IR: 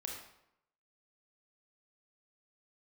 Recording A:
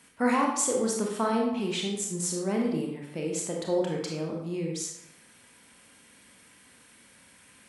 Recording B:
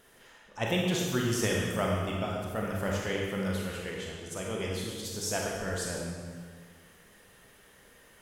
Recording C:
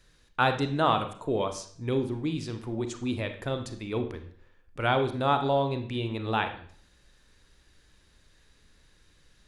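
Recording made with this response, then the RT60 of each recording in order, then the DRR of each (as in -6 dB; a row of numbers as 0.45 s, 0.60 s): A; 0.80 s, 1.7 s, 0.55 s; -0.5 dB, -2.5 dB, 7.0 dB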